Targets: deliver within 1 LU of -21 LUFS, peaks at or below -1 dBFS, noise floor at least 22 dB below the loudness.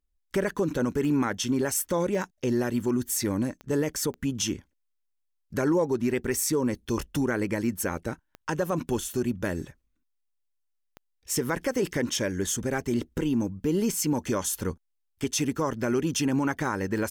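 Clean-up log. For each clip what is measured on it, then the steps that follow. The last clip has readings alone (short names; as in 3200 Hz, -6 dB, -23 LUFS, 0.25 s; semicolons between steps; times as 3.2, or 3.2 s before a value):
clicks 7; loudness -28.0 LUFS; peak -15.0 dBFS; loudness target -21.0 LUFS
-> de-click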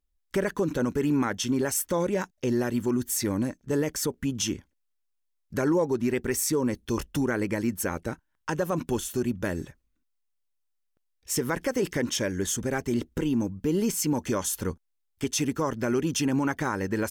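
clicks 0; loudness -28.0 LUFS; peak -15.0 dBFS; loudness target -21.0 LUFS
-> gain +7 dB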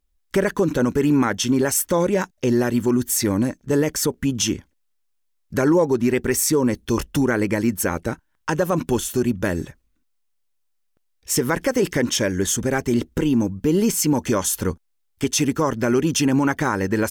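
loudness -21.0 LUFS; peak -8.0 dBFS; noise floor -69 dBFS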